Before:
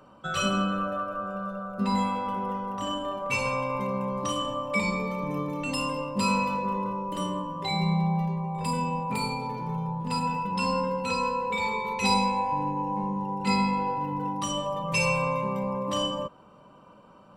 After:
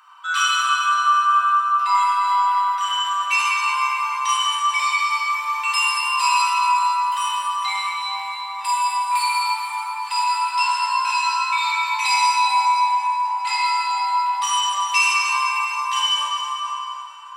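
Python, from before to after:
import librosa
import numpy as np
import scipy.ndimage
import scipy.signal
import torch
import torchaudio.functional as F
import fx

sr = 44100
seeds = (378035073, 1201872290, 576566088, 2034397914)

p1 = fx.rider(x, sr, range_db=10, speed_s=0.5)
p2 = x + (p1 * librosa.db_to_amplitude(0.5))
p3 = scipy.signal.sosfilt(scipy.signal.ellip(4, 1.0, 50, 1000.0, 'highpass', fs=sr, output='sos'), p2)
y = fx.rev_plate(p3, sr, seeds[0], rt60_s=4.0, hf_ratio=0.7, predelay_ms=0, drr_db=-6.5)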